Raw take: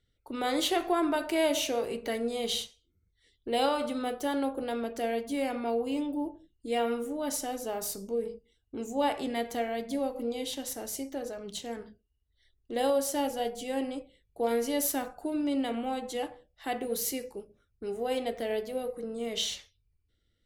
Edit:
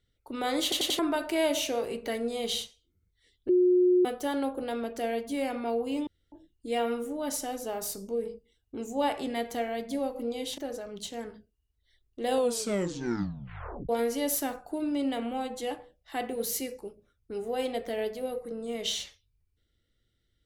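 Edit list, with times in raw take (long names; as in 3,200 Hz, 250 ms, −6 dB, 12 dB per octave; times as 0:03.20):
0:00.63: stutter in place 0.09 s, 4 plays
0:03.49–0:04.05: beep over 361 Hz −18.5 dBFS
0:06.07–0:06.32: fill with room tone
0:10.58–0:11.10: remove
0:12.80: tape stop 1.61 s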